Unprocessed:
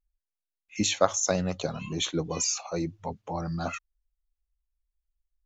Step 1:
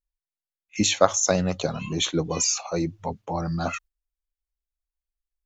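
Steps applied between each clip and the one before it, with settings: gate -49 dBFS, range -13 dB; trim +4.5 dB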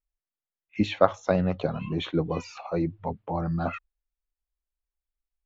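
distance through air 430 m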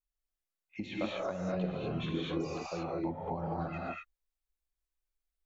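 compression, threshold -30 dBFS, peak gain reduction 17 dB; gated-style reverb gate 270 ms rising, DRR -4.5 dB; trim -6.5 dB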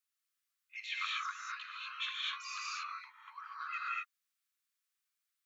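steep high-pass 1.1 kHz 96 dB/octave; trim +6.5 dB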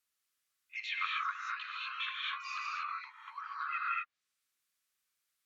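low-pass that closes with the level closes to 2.5 kHz, closed at -38 dBFS; trim +4.5 dB

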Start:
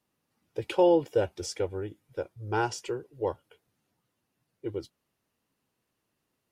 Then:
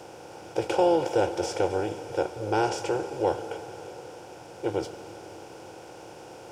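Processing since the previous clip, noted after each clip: spectral levelling over time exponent 0.4; peaking EQ 740 Hz +8 dB 0.25 oct; Schroeder reverb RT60 3.7 s, DRR 10.5 dB; trim -3 dB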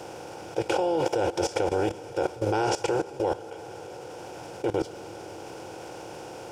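level held to a coarse grid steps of 16 dB; trim +7.5 dB

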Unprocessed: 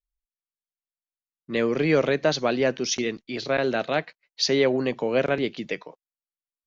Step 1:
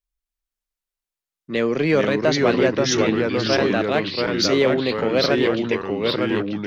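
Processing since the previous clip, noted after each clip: in parallel at -8 dB: hard clipper -18 dBFS, distortion -13 dB; on the sum: ever faster or slower copies 255 ms, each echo -2 st, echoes 3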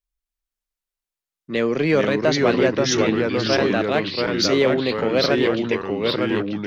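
no audible change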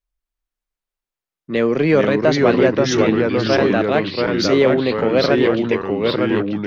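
treble shelf 3.1 kHz -8.5 dB; trim +4 dB

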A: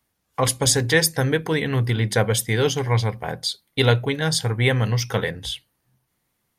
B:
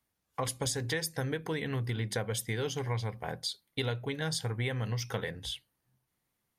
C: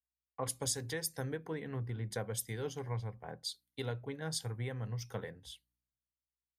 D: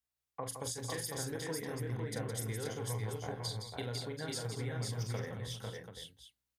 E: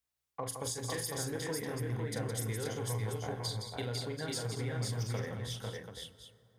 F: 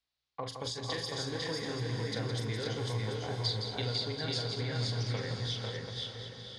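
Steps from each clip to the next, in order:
compression, threshold -21 dBFS, peak gain reduction 9 dB; trim -8.5 dB
dynamic bell 2.8 kHz, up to -5 dB, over -52 dBFS, Q 0.86; hum 60 Hz, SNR 32 dB; three bands expanded up and down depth 100%; trim -5.5 dB
compression, threshold -41 dBFS, peak gain reduction 10.5 dB; on a send: multi-tap echo 41/165/226/499/527/736 ms -7/-7.5/-12/-3.5/-5.5/-10 dB; on the sum: trim +3 dB
in parallel at -10 dB: hard clipper -35.5 dBFS, distortion -13 dB; on the sum: plate-style reverb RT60 3.7 s, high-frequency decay 0.45×, DRR 16.5 dB
resonant low-pass 4.2 kHz, resonance Q 2.7; on a send: echo that smears into a reverb 494 ms, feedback 51%, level -7 dB

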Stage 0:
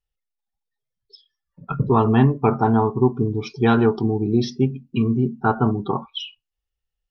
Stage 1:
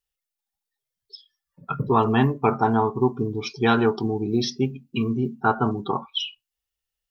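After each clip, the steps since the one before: tilt EQ +2 dB/octave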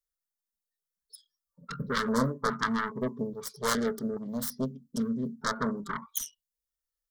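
self-modulated delay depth 0.92 ms; static phaser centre 510 Hz, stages 8; step-sequenced notch 2.4 Hz 270–2700 Hz; trim -3.5 dB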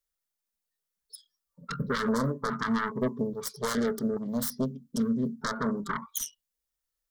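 peak limiter -22.5 dBFS, peak gain reduction 11 dB; trim +3.5 dB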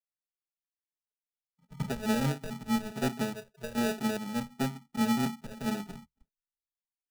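Gaussian low-pass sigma 14 samples; sample-and-hold 41×; three bands expanded up and down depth 70%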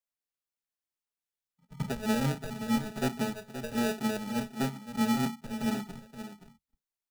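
delay 524 ms -10.5 dB

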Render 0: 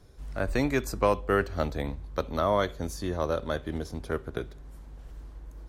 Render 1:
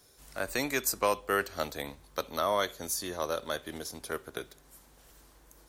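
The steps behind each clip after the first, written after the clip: RIAA curve recording; trim -2 dB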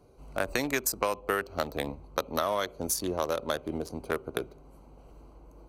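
local Wiener filter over 25 samples; compression 6:1, threshold -34 dBFS, peak gain reduction 11.5 dB; trim +9 dB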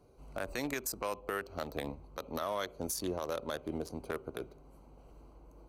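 peak limiter -20.5 dBFS, peak gain reduction 9.5 dB; trim -4 dB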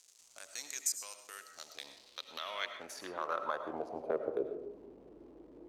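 crackle 430 per s -47 dBFS; band-pass sweep 6.8 kHz -> 350 Hz, 1.54–4.67 s; algorithmic reverb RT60 0.93 s, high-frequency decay 0.25×, pre-delay 60 ms, DRR 8 dB; trim +9 dB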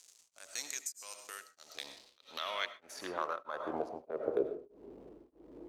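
tremolo of two beating tones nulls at 1.6 Hz; trim +3.5 dB

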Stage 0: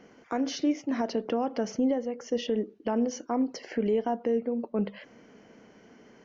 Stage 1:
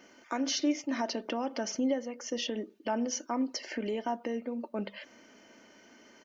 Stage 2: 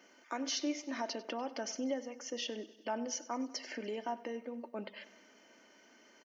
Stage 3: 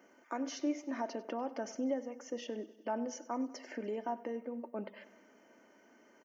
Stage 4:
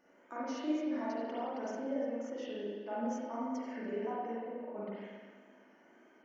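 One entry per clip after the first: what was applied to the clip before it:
tilt EQ +2.5 dB/octave; comb 3.3 ms, depth 48%; trim -1.5 dB
high-pass 320 Hz 6 dB/octave; feedback delay 97 ms, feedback 60%, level -18 dB; trim -4 dB
peaking EQ 4.1 kHz -15 dB 1.7 oct; trim +2 dB
wow and flutter 65 cents; spring tank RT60 1.5 s, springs 39/56 ms, chirp 35 ms, DRR -8 dB; trim -8 dB

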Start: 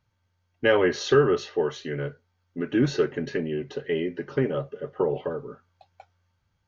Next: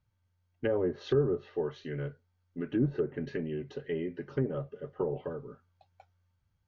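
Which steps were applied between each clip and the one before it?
low-pass that closes with the level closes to 680 Hz, closed at -18 dBFS; bass shelf 190 Hz +8.5 dB; trim -9 dB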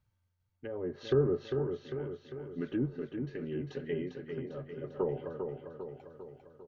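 tremolo 0.8 Hz, depth 75%; on a send: feedback delay 399 ms, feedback 55%, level -6 dB

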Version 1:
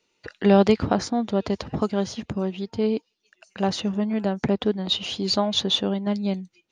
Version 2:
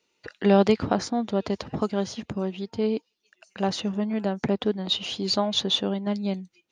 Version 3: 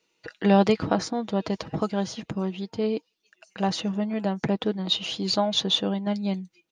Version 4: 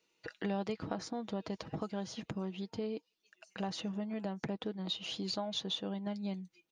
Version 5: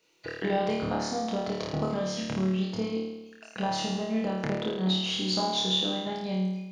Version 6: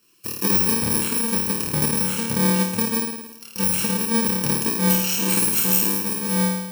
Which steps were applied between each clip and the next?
bass shelf 66 Hz -10 dB; trim -1.5 dB
comb 6.2 ms, depth 37%
compression 3:1, threshold -32 dBFS, peak gain reduction 13.5 dB; trim -5 dB
flutter echo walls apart 4.6 m, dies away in 0.98 s; trim +5.5 dB
bit-reversed sample order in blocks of 64 samples; trim +8 dB

